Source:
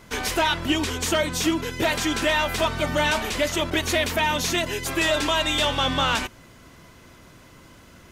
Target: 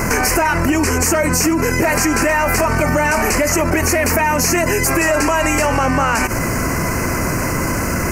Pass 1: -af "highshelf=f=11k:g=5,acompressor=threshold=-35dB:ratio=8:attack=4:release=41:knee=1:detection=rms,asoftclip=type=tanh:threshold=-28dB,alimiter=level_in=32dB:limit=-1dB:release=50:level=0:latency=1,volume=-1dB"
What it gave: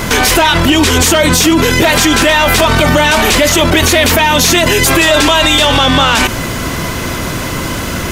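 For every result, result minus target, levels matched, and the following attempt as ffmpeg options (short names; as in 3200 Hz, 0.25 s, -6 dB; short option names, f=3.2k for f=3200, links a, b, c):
4000 Hz band +10.0 dB; compressor: peak gain reduction -9 dB
-af "asuperstop=centerf=3500:order=4:qfactor=1.3,highshelf=f=11k:g=5,acompressor=threshold=-35dB:ratio=8:attack=4:release=41:knee=1:detection=rms,asoftclip=type=tanh:threshold=-28dB,alimiter=level_in=32dB:limit=-1dB:release=50:level=0:latency=1,volume=-1dB"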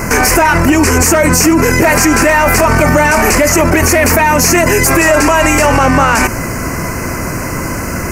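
compressor: peak gain reduction -9 dB
-af "asuperstop=centerf=3500:order=4:qfactor=1.3,highshelf=f=11k:g=5,acompressor=threshold=-45.5dB:ratio=8:attack=4:release=41:knee=1:detection=rms,asoftclip=type=tanh:threshold=-28dB,alimiter=level_in=32dB:limit=-1dB:release=50:level=0:latency=1,volume=-1dB"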